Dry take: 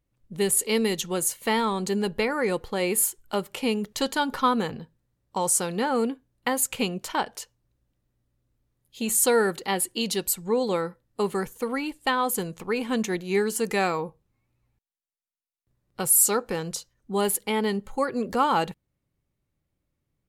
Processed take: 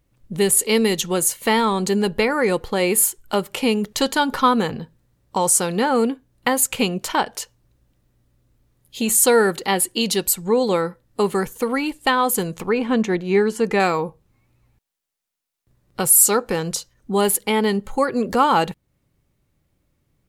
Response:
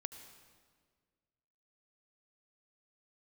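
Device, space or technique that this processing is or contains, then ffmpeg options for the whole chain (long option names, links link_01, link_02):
parallel compression: -filter_complex "[0:a]asplit=2[link_01][link_02];[link_02]acompressor=threshold=-40dB:ratio=6,volume=0dB[link_03];[link_01][link_03]amix=inputs=2:normalize=0,asettb=1/sr,asplit=3[link_04][link_05][link_06];[link_04]atrim=end=12.694[link_07];[link_05]atrim=start=12.69:end=13.8,asetpts=PTS-STARTPTS,afade=type=in:duration=0.004:curve=qsin,afade=type=out:start_time=1.106:duration=0.004:curve=qsin,aemphasis=mode=reproduction:type=75fm[link_08];[link_06]atrim=start=13.796[link_09];[link_07][link_08]acrossfade=duration=0.004:curve1=hsin:curve2=qsin[link_10];[link_10][link_09]acrossfade=duration=0.004:curve1=qsin:curve2=hsin,volume=5dB"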